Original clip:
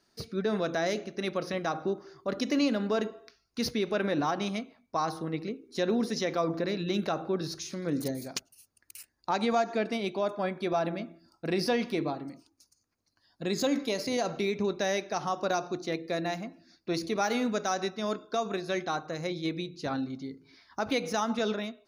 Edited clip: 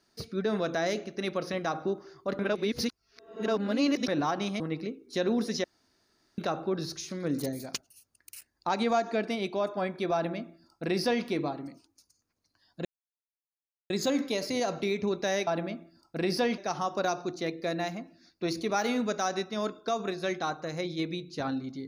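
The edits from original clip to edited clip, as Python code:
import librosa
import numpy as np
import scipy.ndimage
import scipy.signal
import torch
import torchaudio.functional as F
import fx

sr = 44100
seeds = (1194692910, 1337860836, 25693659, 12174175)

y = fx.edit(x, sr, fx.reverse_span(start_s=2.39, length_s=1.69),
    fx.cut(start_s=4.6, length_s=0.62),
    fx.room_tone_fill(start_s=6.26, length_s=0.74),
    fx.duplicate(start_s=10.76, length_s=1.11, to_s=15.04),
    fx.insert_silence(at_s=13.47, length_s=1.05), tone=tone)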